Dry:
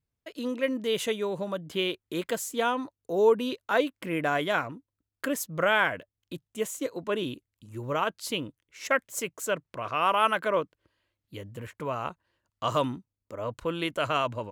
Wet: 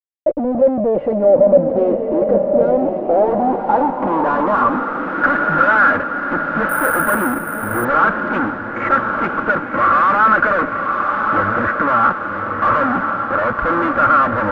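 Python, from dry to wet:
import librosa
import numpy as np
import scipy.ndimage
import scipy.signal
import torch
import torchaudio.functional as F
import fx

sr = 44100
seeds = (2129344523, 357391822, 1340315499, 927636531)

y = scipy.signal.sosfilt(scipy.signal.butter(4, 2200.0, 'lowpass', fs=sr, output='sos'), x)
y = y + 0.88 * np.pad(y, (int(3.6 * sr / 1000.0), 0))[:len(y)]
y = fx.fuzz(y, sr, gain_db=48.0, gate_db=-50.0)
y = fx.echo_diffused(y, sr, ms=1099, feedback_pct=54, wet_db=-4.5)
y = fx.filter_sweep_lowpass(y, sr, from_hz=580.0, to_hz=1400.0, start_s=2.62, end_s=5.27, q=5.7)
y = fx.resample_bad(y, sr, factor=4, down='none', up='hold', at=(6.69, 7.85))
y = y * 10.0 ** (-7.0 / 20.0)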